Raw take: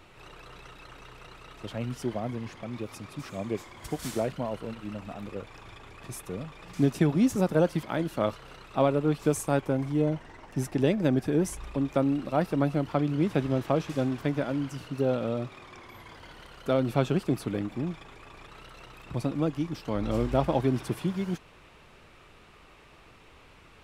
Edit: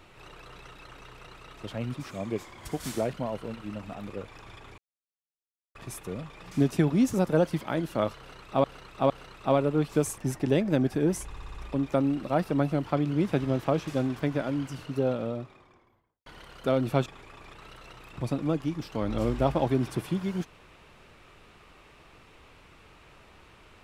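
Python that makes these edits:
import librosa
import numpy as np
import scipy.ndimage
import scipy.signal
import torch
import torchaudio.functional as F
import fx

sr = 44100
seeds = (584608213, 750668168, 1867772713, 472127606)

y = fx.studio_fade_out(x, sr, start_s=14.88, length_s=1.4)
y = fx.edit(y, sr, fx.cut(start_s=1.94, length_s=1.19),
    fx.insert_silence(at_s=5.97, length_s=0.97),
    fx.repeat(start_s=8.4, length_s=0.46, count=3),
    fx.cut(start_s=9.48, length_s=1.02),
    fx.stutter(start_s=11.57, slice_s=0.06, count=6),
    fx.cut(start_s=17.08, length_s=0.91), tone=tone)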